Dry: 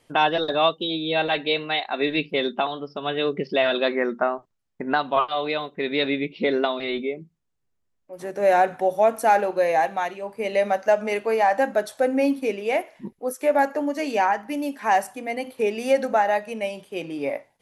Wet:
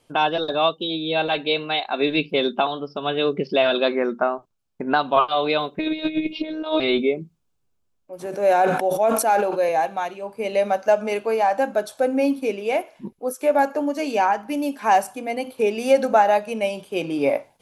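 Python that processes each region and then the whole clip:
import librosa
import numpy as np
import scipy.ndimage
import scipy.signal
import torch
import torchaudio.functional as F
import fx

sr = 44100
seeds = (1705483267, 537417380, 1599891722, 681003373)

y = fx.chain(x, sr, fx.robotise(hz=312.0),
    fx.over_compress(threshold_db=-30.0, ratio=-0.5), at=(5.79, 6.8))
y = fx.chain(y, sr, fx.highpass(hz=190.0, slope=12),
    fx.sustainer(db_per_s=46.0), at=(8.26, 9.69))
y = fx.peak_eq(y, sr, hz=1900.0, db=-11.5, octaves=0.2)
y = fx.rider(y, sr, range_db=10, speed_s=2.0)
y = F.gain(torch.from_numpy(y), 1.0).numpy()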